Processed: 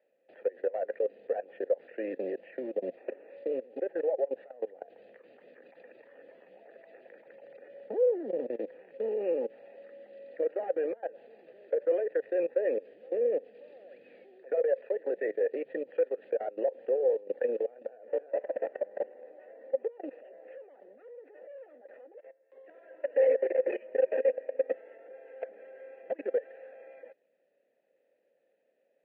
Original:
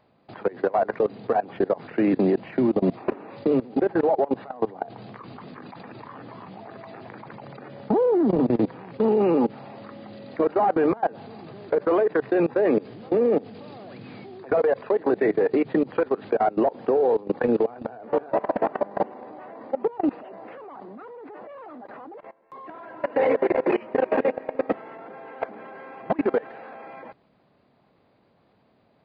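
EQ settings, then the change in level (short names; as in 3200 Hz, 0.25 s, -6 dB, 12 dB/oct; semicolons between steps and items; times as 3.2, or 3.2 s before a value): vowel filter e; HPF 220 Hz 12 dB/oct; air absorption 100 m; 0.0 dB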